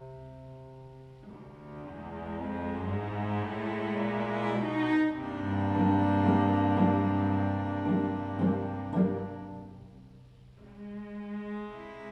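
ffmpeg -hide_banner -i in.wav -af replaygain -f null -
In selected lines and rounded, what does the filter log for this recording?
track_gain = +10.9 dB
track_peak = 0.157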